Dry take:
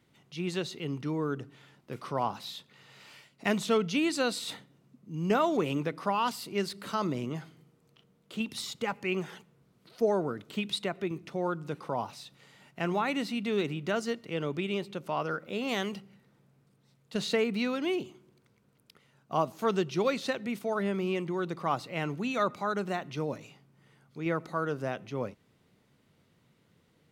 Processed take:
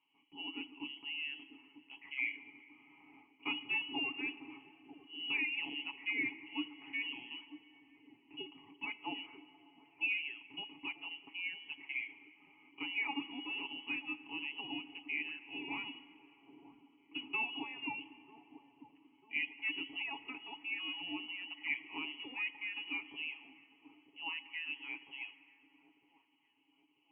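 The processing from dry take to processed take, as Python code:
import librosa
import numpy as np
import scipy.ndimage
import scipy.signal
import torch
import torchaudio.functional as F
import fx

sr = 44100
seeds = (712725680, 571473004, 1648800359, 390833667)

p1 = fx.freq_invert(x, sr, carrier_hz=3100)
p2 = fx.vowel_filter(p1, sr, vowel='u')
p3 = p2 + 0.71 * np.pad(p2, (int(7.2 * sr / 1000.0), 0))[:len(p2)]
p4 = p3 + fx.echo_wet_lowpass(p3, sr, ms=943, feedback_pct=49, hz=660.0, wet_db=-12, dry=0)
p5 = fx.rev_plate(p4, sr, seeds[0], rt60_s=4.3, hf_ratio=0.5, predelay_ms=0, drr_db=14.0)
y = p5 * 10.0 ** (3.0 / 20.0)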